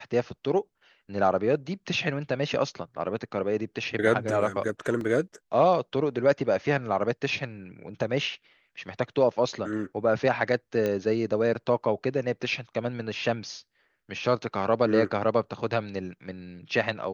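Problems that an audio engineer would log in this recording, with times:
5.01 s: dropout 2 ms
10.86 s: pop -16 dBFS

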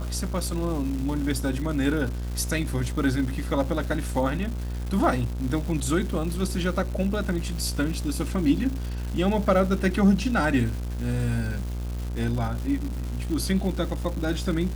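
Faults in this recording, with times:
buzz 60 Hz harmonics 27 -30 dBFS
crackle 440 per s -33 dBFS

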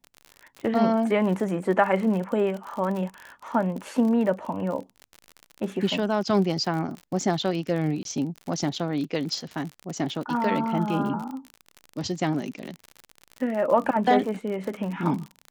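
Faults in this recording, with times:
crackle 48 per s -31 dBFS
8.03–8.05 s: dropout 22 ms

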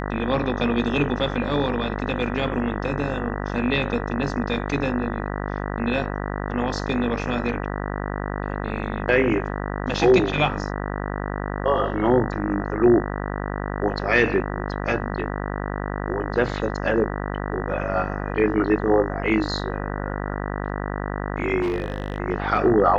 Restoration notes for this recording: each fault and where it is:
buzz 50 Hz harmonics 39 -28 dBFS
21.61–22.18 s: clipped -20 dBFS

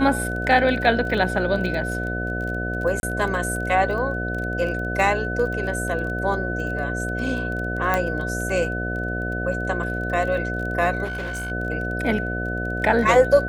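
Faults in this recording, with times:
buzz 60 Hz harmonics 12 -28 dBFS
crackle 21 per s -29 dBFS
whine 1.5 kHz -28 dBFS
3.00–3.03 s: dropout 31 ms
7.94 s: pop -8 dBFS
11.04–11.52 s: clipped -25.5 dBFS

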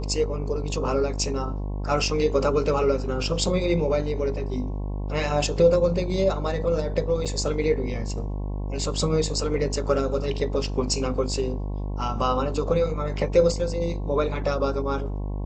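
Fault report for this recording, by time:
buzz 50 Hz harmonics 22 -29 dBFS
7.25–7.26 s: dropout 6.4 ms

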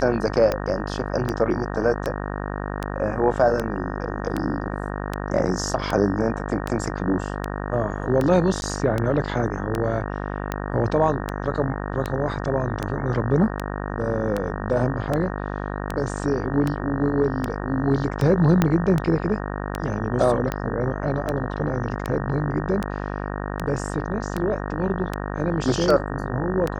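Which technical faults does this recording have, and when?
buzz 50 Hz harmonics 37 -29 dBFS
tick 78 rpm -11 dBFS
8.61–8.62 s: dropout 11 ms
18.62 s: pop -5 dBFS

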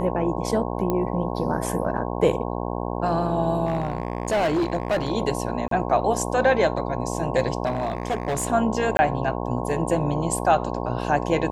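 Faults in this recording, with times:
buzz 60 Hz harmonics 18 -28 dBFS
0.90 s: pop -12 dBFS
3.65–5.12 s: clipped -18.5 dBFS
5.68–5.71 s: dropout 33 ms
7.65–8.47 s: clipped -20 dBFS
8.97–8.99 s: dropout 20 ms

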